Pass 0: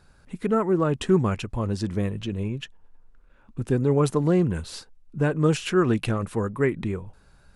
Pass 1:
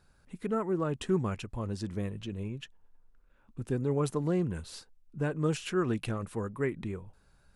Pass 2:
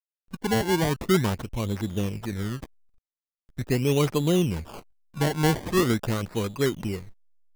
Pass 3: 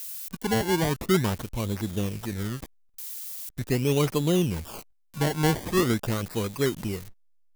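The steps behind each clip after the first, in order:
high-shelf EQ 8,400 Hz +4 dB; level −8.5 dB
slack as between gear wheels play −45.5 dBFS; sample-and-hold swept by an LFO 24×, swing 100% 0.42 Hz; level +7 dB
spike at every zero crossing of −27 dBFS; level −1 dB

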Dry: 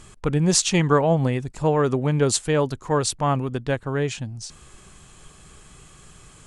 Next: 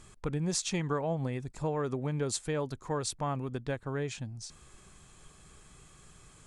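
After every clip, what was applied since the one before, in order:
notch filter 2,900 Hz, Q 13
downward compressor 2.5 to 1, threshold −22 dBFS, peak gain reduction 7 dB
level −8 dB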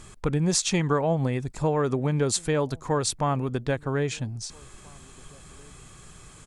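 slap from a distant wall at 280 metres, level −27 dB
level +8 dB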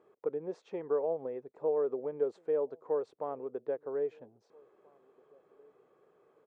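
four-pole ladder band-pass 510 Hz, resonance 60%

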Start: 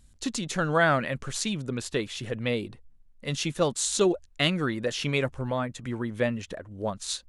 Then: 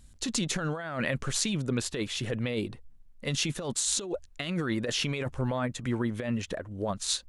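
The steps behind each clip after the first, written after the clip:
compressor whose output falls as the input rises −30 dBFS, ratio −1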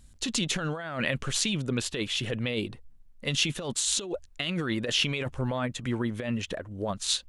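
dynamic equaliser 3,000 Hz, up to +7 dB, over −49 dBFS, Q 1.9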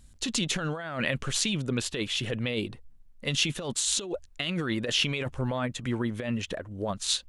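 no processing that can be heard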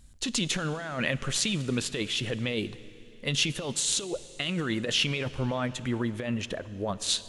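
dense smooth reverb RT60 3.6 s, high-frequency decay 0.85×, DRR 15.5 dB

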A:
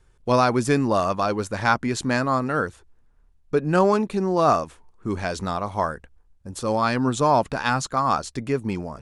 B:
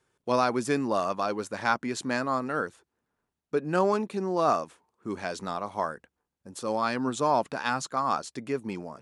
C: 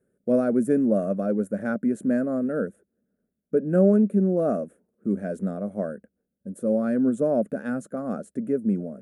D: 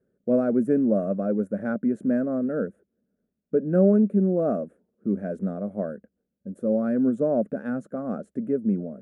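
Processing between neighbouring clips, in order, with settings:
high-pass filter 190 Hz 12 dB per octave; level −5.5 dB
drawn EQ curve 140 Hz 0 dB, 200 Hz +15 dB, 330 Hz +3 dB, 590 Hz +7 dB, 950 Hz −25 dB, 1,500 Hz −5 dB, 2,300 Hz −17 dB, 4,700 Hz −29 dB, 9,600 Hz −2 dB
low-pass filter 1,600 Hz 6 dB per octave

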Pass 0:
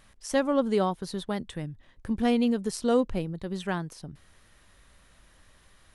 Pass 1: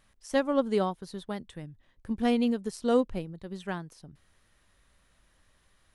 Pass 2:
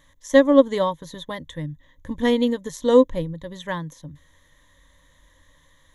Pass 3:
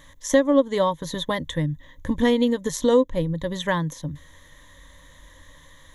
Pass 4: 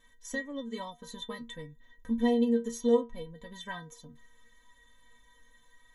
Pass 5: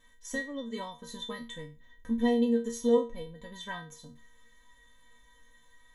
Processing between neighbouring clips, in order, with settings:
expander for the loud parts 1.5 to 1, over −35 dBFS
EQ curve with evenly spaced ripples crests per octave 1.1, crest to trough 15 dB; level +5.5 dB
downward compressor 2.5 to 1, threshold −28 dBFS, peak gain reduction 13.5 dB; level +8 dB
stiff-string resonator 230 Hz, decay 0.25 s, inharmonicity 0.008
peak hold with a decay on every bin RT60 0.31 s

